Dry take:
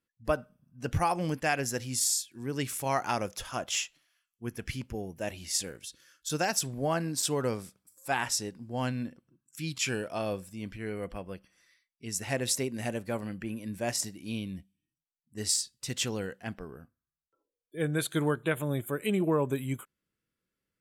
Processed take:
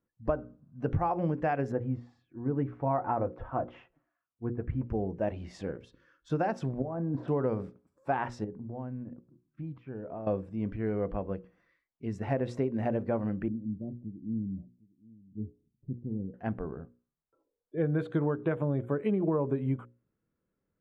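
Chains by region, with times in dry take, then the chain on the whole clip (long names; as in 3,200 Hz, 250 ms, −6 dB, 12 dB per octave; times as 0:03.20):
0:01.72–0:04.86: low-pass filter 1,400 Hz + notch comb filter 200 Hz
0:06.82–0:07.28: low-pass filter 1,000 Hz + compressor whose output falls as the input rises −39 dBFS
0:08.44–0:10.27: downward compressor 8 to 1, threshold −39 dBFS + head-to-tape spacing loss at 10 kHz 44 dB
0:13.48–0:16.34: transistor ladder low-pass 330 Hz, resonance 25% + single-tap delay 756 ms −22 dB
whole clip: low-pass filter 1,000 Hz 12 dB per octave; mains-hum notches 60/120/180/240/300/360/420/480/540 Hz; downward compressor, threshold −32 dBFS; level +7 dB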